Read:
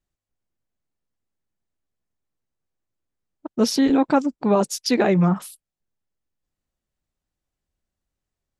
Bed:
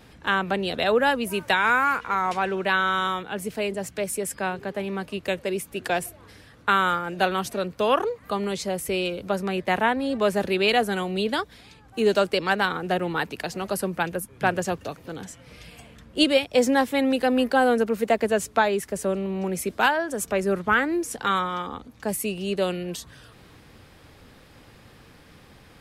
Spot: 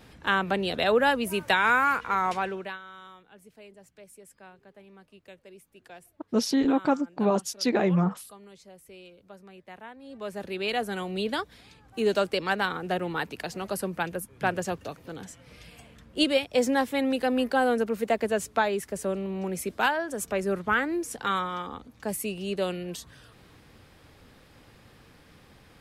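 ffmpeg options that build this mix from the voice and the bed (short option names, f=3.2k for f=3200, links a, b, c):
-filter_complex "[0:a]adelay=2750,volume=-5.5dB[a];[1:a]volume=17dB,afade=t=out:st=2.27:d=0.52:silence=0.0891251,afade=t=in:st=9.98:d=1.27:silence=0.11885[b];[a][b]amix=inputs=2:normalize=0"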